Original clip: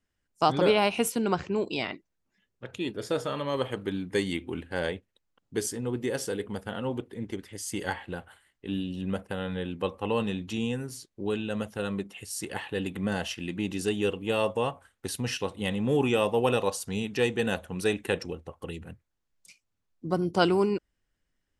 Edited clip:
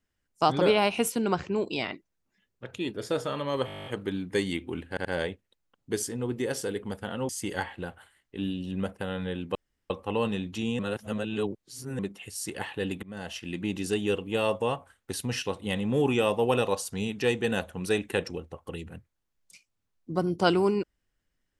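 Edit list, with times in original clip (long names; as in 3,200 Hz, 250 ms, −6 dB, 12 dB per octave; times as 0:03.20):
0:03.66: stutter 0.02 s, 11 plays
0:04.69: stutter 0.08 s, 3 plays
0:06.93–0:07.59: remove
0:09.85: splice in room tone 0.35 s
0:10.74–0:11.94: reverse
0:12.98–0:13.50: fade in, from −21 dB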